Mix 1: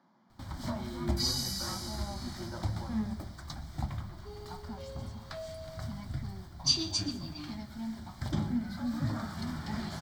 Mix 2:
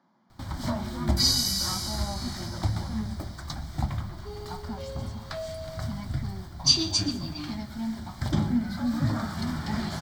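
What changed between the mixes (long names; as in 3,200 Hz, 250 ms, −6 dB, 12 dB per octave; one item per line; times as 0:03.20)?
first sound +6.5 dB
second sound +9.0 dB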